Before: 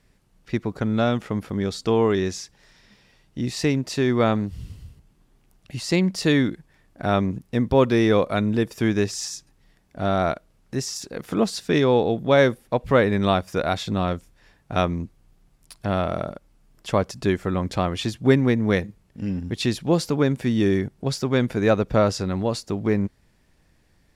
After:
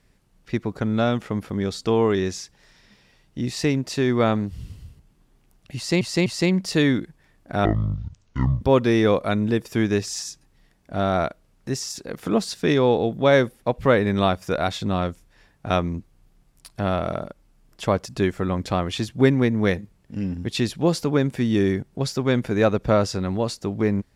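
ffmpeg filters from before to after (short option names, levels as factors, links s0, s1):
-filter_complex "[0:a]asplit=5[s0][s1][s2][s3][s4];[s0]atrim=end=6.012[s5];[s1]atrim=start=5.758:end=6.012[s6];[s2]atrim=start=5.758:end=7.154[s7];[s3]atrim=start=7.15:end=7.67,asetpts=PTS-STARTPTS,asetrate=23814,aresample=44100[s8];[s4]atrim=start=7.666[s9];[s5][s6]acrossfade=d=0.004:c1=hsin:c2=hsin[s10];[s10][s7]acrossfade=d=0.004:c1=hsin:c2=hsin[s11];[s11][s8]acrossfade=d=0.004:c1=hsin:c2=hsin[s12];[s12][s9]acrossfade=d=0.004:c1=hsin:c2=hsin"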